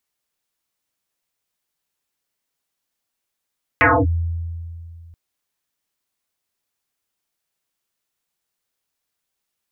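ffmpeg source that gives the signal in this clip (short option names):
-f lavfi -i "aevalsrc='0.355*pow(10,-3*t/2.52)*sin(2*PI*83.8*t+12*clip(1-t/0.25,0,1)*sin(2*PI*2.33*83.8*t))':d=1.33:s=44100"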